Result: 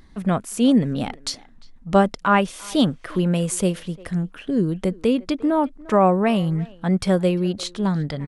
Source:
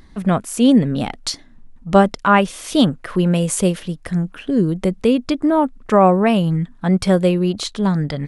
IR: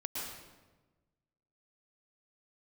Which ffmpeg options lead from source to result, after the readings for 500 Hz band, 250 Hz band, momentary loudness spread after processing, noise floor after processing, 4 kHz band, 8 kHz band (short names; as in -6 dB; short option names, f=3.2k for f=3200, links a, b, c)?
-4.0 dB, -4.0 dB, 9 LU, -48 dBFS, -4.0 dB, -4.0 dB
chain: -filter_complex "[0:a]asplit=2[a][b];[b]adelay=350,highpass=300,lowpass=3.4k,asoftclip=type=hard:threshold=-11.5dB,volume=-20dB[c];[a][c]amix=inputs=2:normalize=0,volume=-4dB"